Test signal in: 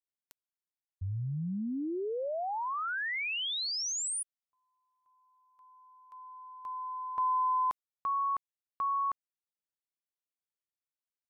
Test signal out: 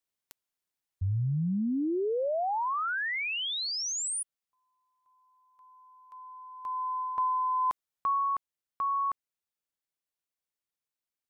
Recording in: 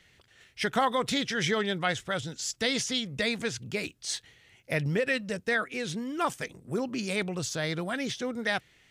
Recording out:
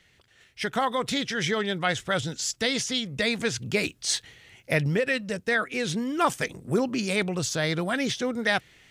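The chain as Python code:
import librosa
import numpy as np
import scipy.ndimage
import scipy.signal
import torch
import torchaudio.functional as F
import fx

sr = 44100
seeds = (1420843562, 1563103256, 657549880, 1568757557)

y = fx.rider(x, sr, range_db=10, speed_s=0.5)
y = y * librosa.db_to_amplitude(3.5)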